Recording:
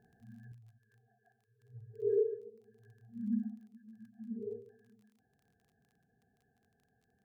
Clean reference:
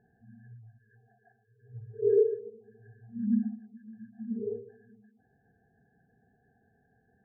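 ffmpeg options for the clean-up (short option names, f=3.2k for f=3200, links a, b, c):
-af "adeclick=t=4,asetnsamples=n=441:p=0,asendcmd='0.52 volume volume 7dB',volume=0dB"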